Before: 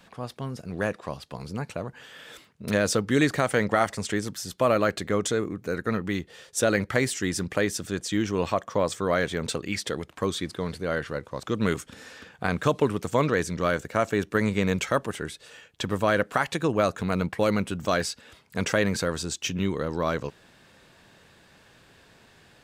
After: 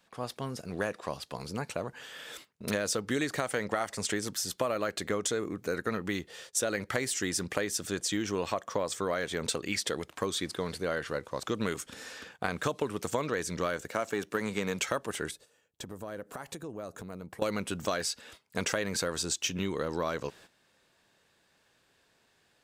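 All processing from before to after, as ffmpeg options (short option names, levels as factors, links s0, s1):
-filter_complex "[0:a]asettb=1/sr,asplit=3[s0][s1][s2];[s0]atrim=end=13.914[s3];[s1]atrim=start=13.91:end=14.81,asetpts=PTS-STARTPTS,afade=t=in:d=0.004:c=qsin,afade=t=out:st=0.896:d=0.004:c=qsin,aeval=exprs='if(lt(val(0),0),0.708*val(0),val(0))':c=same,highpass=110[s4];[s2]atrim=start=14.806[s5];[s3][s4]acrossfade=d=0.004:c1=hsin:c2=qsin[s6];[s6][s5]acrossfade=d=0.004:c1=qsin:c2=hsin,asettb=1/sr,asplit=3[s7][s8][s9];[s7]atrim=end=15.314[s10];[s8]atrim=start=15.31:end=17.42,asetpts=PTS-STARTPTS,afade=t=in:d=0.004:c=qsin,afade=t=out:st=2.106:d=0.004:c=qsin,equalizer=f=2800:w=0.36:g=-12,acompressor=threshold=0.0141:ratio=4:attack=3.2:release=140:knee=1:detection=peak[s11];[s9]atrim=start=17.416[s12];[s10][s11]acrossfade=d=0.004:c1=hsin:c2=qsin[s13];[s13][s12]acrossfade=d=0.004:c1=qsin:c2=hsin,agate=range=0.224:threshold=0.00316:ratio=16:detection=peak,bass=f=250:g=-6,treble=f=4000:g=4,acompressor=threshold=0.0447:ratio=6"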